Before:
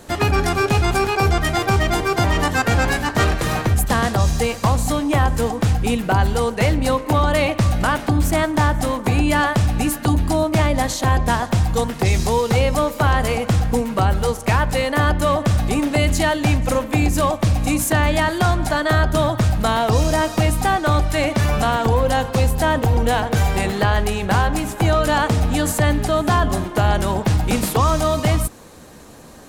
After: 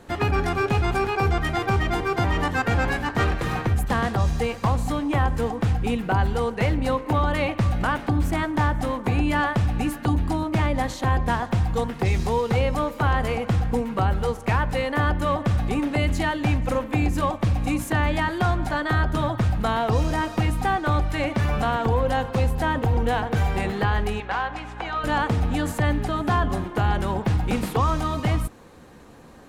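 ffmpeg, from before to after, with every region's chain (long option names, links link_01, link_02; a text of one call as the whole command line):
ffmpeg -i in.wav -filter_complex "[0:a]asettb=1/sr,asplit=3[link_01][link_02][link_03];[link_01]atrim=end=24.204[link_04];[link_02]atrim=start=24.2:end=25.04,asetpts=PTS-STARTPTS,afade=type=in:duration=0.004:curve=qsin,afade=type=out:start_time=0.836:duration=0.004:curve=qsin,highpass=650,lowpass=4600,aeval=exprs='val(0)+0.0224*(sin(2*PI*60*n/s)+sin(2*PI*2*60*n/s)/2+sin(2*PI*3*60*n/s)/3+sin(2*PI*4*60*n/s)/4+sin(2*PI*5*60*n/s)/5)':channel_layout=same[link_05];[link_03]atrim=start=25.036[link_06];[link_04][link_05]acrossfade=duration=0.004:curve1=hsin:curve2=qsin[link_07];[link_07][link_06]acrossfade=duration=0.004:curve1=qsin:curve2=hsin,bass=frequency=250:gain=0,treble=frequency=4000:gain=-10,bandreject=frequency=620:width=13,volume=-4.5dB" out.wav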